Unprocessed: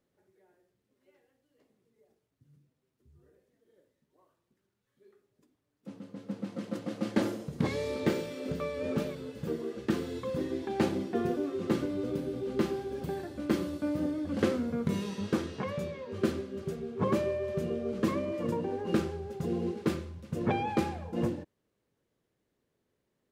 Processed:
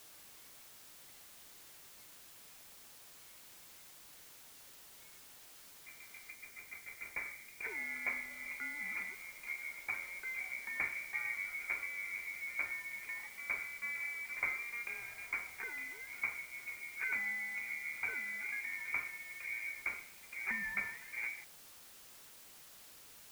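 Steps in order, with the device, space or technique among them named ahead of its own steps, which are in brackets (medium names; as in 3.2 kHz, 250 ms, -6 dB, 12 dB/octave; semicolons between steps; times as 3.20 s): scrambled radio voice (band-pass 320–2700 Hz; frequency inversion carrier 2.6 kHz; white noise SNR 13 dB); 6.30–7.65 s: peaking EQ 1.3 kHz -5 dB 2.9 oct; trim -6.5 dB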